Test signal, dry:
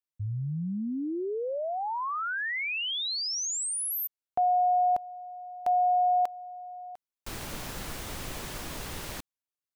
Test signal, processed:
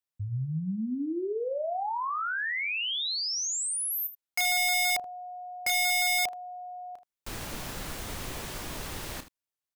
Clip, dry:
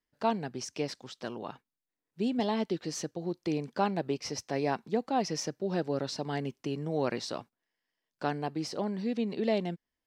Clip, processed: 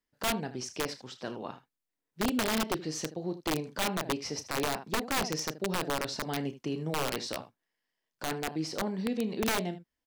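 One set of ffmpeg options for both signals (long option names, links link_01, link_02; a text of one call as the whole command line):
ffmpeg -i in.wav -af "aecho=1:1:32|78:0.282|0.188,aeval=exprs='(mod(13.3*val(0)+1,2)-1)/13.3':channel_layout=same" out.wav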